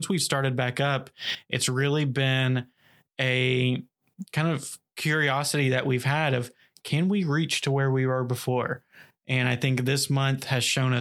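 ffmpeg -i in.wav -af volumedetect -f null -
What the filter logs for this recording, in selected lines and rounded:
mean_volume: -26.0 dB
max_volume: -8.1 dB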